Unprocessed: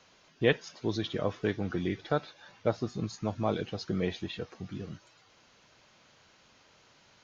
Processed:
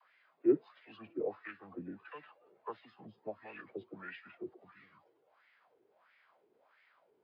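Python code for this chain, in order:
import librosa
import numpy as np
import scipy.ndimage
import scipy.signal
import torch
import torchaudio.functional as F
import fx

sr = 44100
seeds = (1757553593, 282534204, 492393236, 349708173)

y = fx.dispersion(x, sr, late='lows', ms=46.0, hz=440.0)
y = fx.wah_lfo(y, sr, hz=1.5, low_hz=480.0, high_hz=2700.0, q=4.7)
y = fx.formant_shift(y, sr, semitones=-5)
y = y * librosa.db_to_amplitude(2.5)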